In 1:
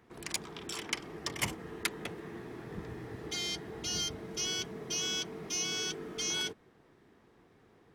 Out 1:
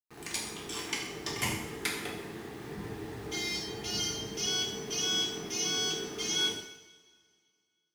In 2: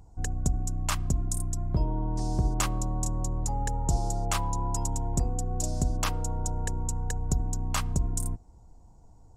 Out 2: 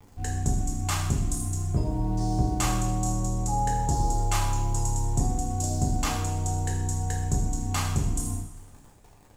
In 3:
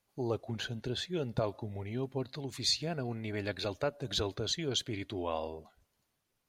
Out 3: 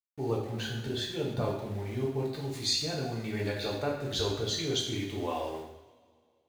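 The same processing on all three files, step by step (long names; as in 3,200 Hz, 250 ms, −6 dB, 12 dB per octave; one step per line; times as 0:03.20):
centre clipping without the shift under −47.5 dBFS
coupled-rooms reverb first 0.78 s, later 2.3 s, from −19 dB, DRR −3.5 dB
level −2.5 dB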